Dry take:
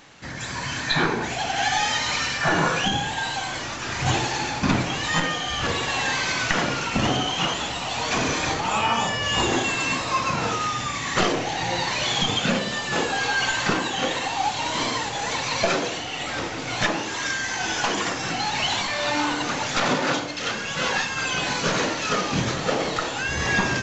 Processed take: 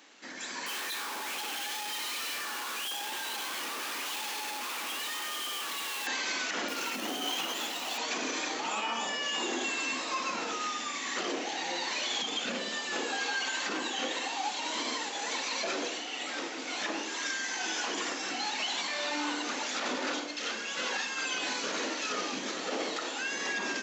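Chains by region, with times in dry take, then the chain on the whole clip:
0.66–6.07 rippled Chebyshev high-pass 810 Hz, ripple 6 dB + Schmitt trigger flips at -37.5 dBFS
6.68–7.98 notches 50/100/150 Hz + companded quantiser 4-bit
whole clip: bell 810 Hz -4.5 dB 2.5 oct; limiter -18 dBFS; steep high-pass 240 Hz 36 dB/oct; gain -5 dB

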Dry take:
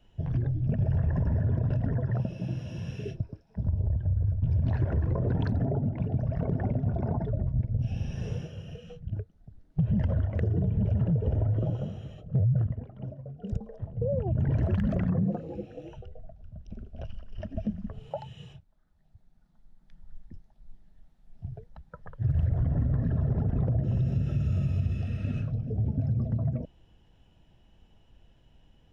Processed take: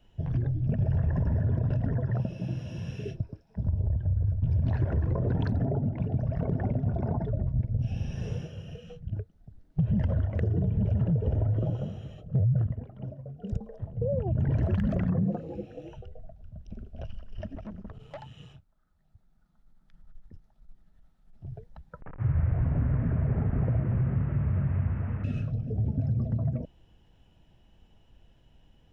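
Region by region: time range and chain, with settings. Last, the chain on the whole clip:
17.55–21.46 bell 1300 Hz +8.5 dB 0.29 oct + tube stage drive 36 dB, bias 0.55
22.01–25.24 delta modulation 16 kbps, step -36.5 dBFS + LPF 1800 Hz 24 dB/oct
whole clip: dry

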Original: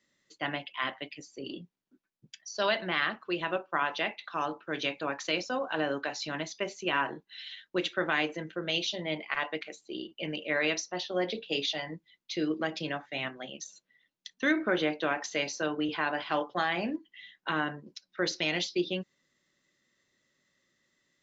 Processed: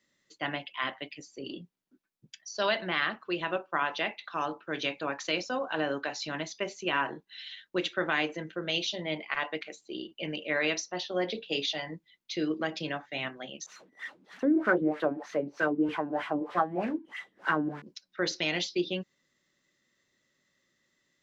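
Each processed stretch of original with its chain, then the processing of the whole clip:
13.66–17.82 switching spikes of -24 dBFS + LFO low-pass sine 3.2 Hz 250–1800 Hz
whole clip: dry

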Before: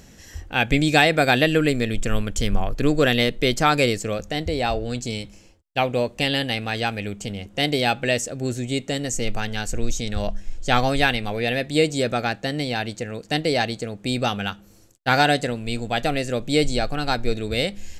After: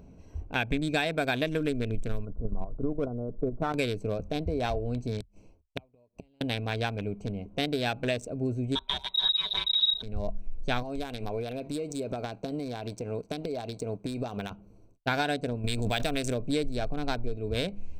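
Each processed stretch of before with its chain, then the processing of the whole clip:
2.25–3.74 brick-wall FIR low-pass 1500 Hz + level quantiser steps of 10 dB
5.2–6.41 high shelf 4800 Hz +11.5 dB + flipped gate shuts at -17 dBFS, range -38 dB
8.75–10.03 comb 5.3 ms, depth 90% + inverted band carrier 3800 Hz
10.82–14.51 sample leveller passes 1 + tone controls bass -5 dB, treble +8 dB + compressor 16:1, threshold -24 dBFS
15.64–16.34 block floating point 7-bit + high shelf 2900 Hz +10.5 dB + backwards sustainer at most 36 dB/s
whole clip: Wiener smoothing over 25 samples; ripple EQ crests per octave 1.6, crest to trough 6 dB; compressor 4:1, threshold -23 dBFS; gain -2.5 dB

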